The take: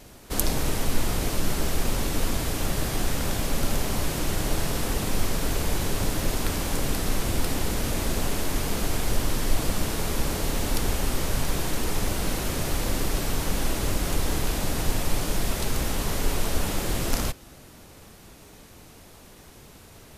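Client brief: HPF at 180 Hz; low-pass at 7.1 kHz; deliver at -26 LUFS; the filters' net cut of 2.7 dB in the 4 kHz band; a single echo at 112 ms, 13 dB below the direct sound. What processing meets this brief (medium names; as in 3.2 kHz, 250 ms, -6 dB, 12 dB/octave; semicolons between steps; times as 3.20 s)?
high-pass 180 Hz; low-pass 7.1 kHz; peaking EQ 4 kHz -3 dB; delay 112 ms -13 dB; trim +5.5 dB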